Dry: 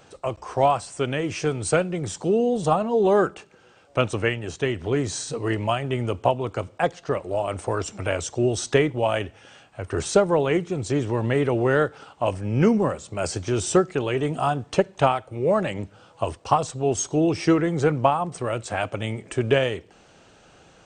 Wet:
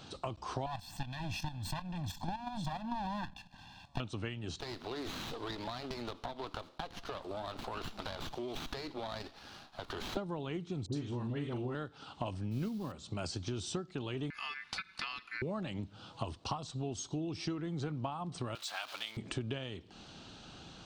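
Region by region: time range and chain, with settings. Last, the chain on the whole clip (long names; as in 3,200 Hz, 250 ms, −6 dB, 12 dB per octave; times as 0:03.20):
0:00.66–0:04.00: lower of the sound and its delayed copy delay 1.1 ms + comb filter 1.2 ms, depth 90% + output level in coarse steps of 11 dB
0:04.60–0:10.17: high-pass filter 550 Hz + downward compressor, threshold −32 dBFS + windowed peak hold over 9 samples
0:10.86–0:11.75: double-tracking delay 41 ms −8 dB + all-pass dispersion highs, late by 67 ms, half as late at 1,200 Hz
0:12.51–0:12.92: transient designer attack +12 dB, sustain +3 dB + noise that follows the level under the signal 22 dB
0:14.30–0:15.42: notch filter 1,300 Hz, Q 5.9 + ring modulation 1,900 Hz + downward compressor 2 to 1, threshold −31 dBFS
0:18.55–0:19.17: converter with a step at zero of −32.5 dBFS + high-pass filter 1,100 Hz
whole clip: octave-band graphic EQ 250/500/2,000/4,000/8,000 Hz +4/−10/−8/+11/−5 dB; downward compressor 8 to 1, threshold −38 dBFS; high-shelf EQ 4,800 Hz −6 dB; level +2.5 dB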